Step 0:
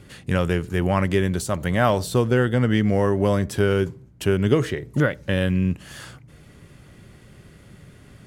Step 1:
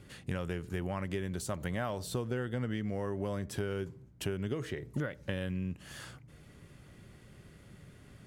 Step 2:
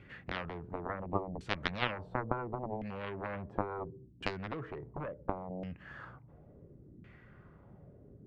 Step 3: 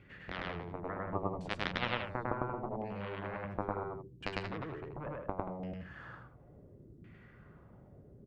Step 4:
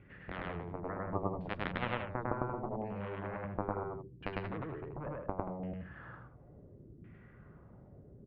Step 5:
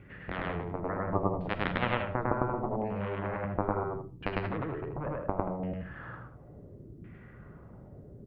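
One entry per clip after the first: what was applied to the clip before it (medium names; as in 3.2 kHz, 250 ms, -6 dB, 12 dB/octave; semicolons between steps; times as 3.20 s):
compression, threshold -24 dBFS, peak gain reduction 11.5 dB; trim -7.5 dB
LFO low-pass saw down 0.71 Hz 270–2400 Hz; Chebyshev shaper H 3 -7 dB, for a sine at -18.5 dBFS; trim +7 dB
loudspeakers at several distances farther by 35 m 0 dB, 62 m -8 dB; trim -3.5 dB
distance through air 450 m; trim +1.5 dB
reverberation RT60 0.30 s, pre-delay 15 ms, DRR 12.5 dB; trim +6 dB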